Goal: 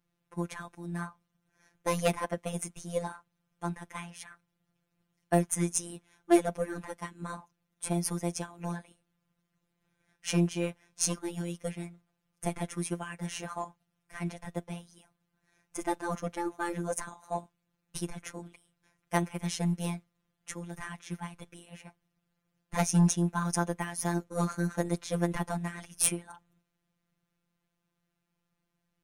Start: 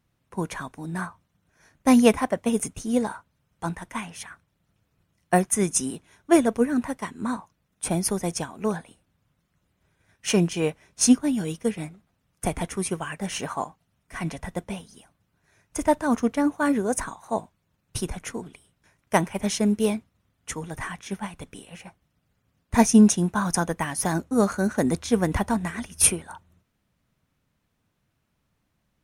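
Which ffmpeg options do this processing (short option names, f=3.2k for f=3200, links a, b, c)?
-af "aeval=exprs='0.75*(cos(1*acos(clip(val(0)/0.75,-1,1)))-cos(1*PI/2))+0.168*(cos(2*acos(clip(val(0)/0.75,-1,1)))-cos(2*PI/2))+0.266*(cos(5*acos(clip(val(0)/0.75,-1,1)))-cos(5*PI/2))+0.133*(cos(7*acos(clip(val(0)/0.75,-1,1)))-cos(7*PI/2))+0.0299*(cos(8*acos(clip(val(0)/0.75,-1,1)))-cos(8*PI/2))':c=same,afftfilt=real='hypot(re,im)*cos(PI*b)':imag='0':win_size=1024:overlap=0.75,volume=-8dB"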